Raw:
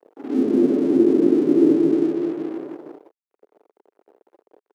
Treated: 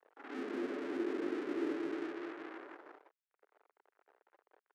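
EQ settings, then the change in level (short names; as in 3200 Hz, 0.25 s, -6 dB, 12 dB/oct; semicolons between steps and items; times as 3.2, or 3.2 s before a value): band-pass 1600 Hz, Q 1.6; tilt +2 dB/oct; -1.0 dB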